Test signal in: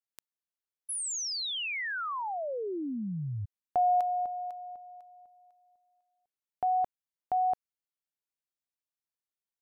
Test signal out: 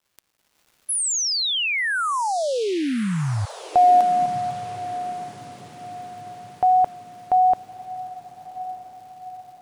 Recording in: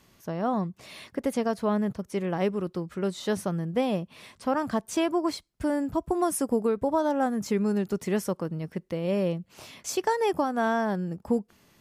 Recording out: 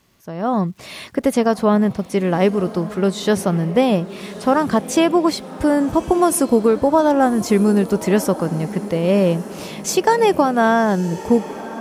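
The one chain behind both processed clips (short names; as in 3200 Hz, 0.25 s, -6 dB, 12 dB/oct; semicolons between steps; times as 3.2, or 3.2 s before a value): crackle 580/s -59 dBFS; AGC gain up to 11 dB; diffused feedback echo 1.2 s, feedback 52%, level -15 dB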